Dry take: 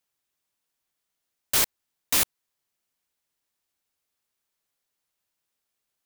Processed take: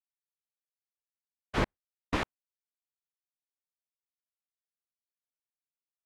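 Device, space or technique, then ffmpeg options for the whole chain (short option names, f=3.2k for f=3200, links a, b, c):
hearing-loss simulation: -filter_complex "[0:a]asettb=1/sr,asplit=3[a][b][c];[a]atrim=end=1.574[d];[b]atrim=start=1.57:end=2.16,asetpts=PTS-STARTPTS,afade=t=in:d=0.004:c=qsin,afade=t=out:st=0.586:d=0.004:c=qsin,lowshelf=f=380:g=11.5[e];[c]atrim=start=2.156[f];[d][e]acrossfade=d=0.004:c1=hsin:c2=qsin[g];[g][f]acrossfade=d=0.004:c1=qsin:c2=hsin,lowpass=1.7k,agate=range=-33dB:threshold=-31dB:ratio=3:detection=peak,volume=1dB"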